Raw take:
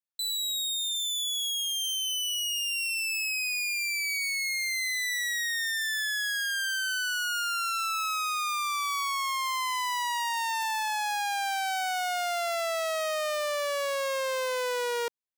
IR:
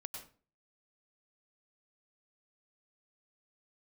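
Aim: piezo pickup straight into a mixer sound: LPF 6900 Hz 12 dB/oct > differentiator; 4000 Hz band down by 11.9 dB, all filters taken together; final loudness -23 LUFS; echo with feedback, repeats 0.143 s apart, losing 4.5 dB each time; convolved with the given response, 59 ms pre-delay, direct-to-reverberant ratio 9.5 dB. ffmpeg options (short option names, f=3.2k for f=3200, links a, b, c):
-filter_complex "[0:a]equalizer=f=4k:t=o:g=-7.5,aecho=1:1:143|286|429|572|715|858|1001|1144|1287:0.596|0.357|0.214|0.129|0.0772|0.0463|0.0278|0.0167|0.01,asplit=2[a][b];[1:a]atrim=start_sample=2205,adelay=59[c];[b][c]afir=irnorm=-1:irlink=0,volume=-6.5dB[d];[a][d]amix=inputs=2:normalize=0,lowpass=6.9k,aderivative,volume=14.5dB"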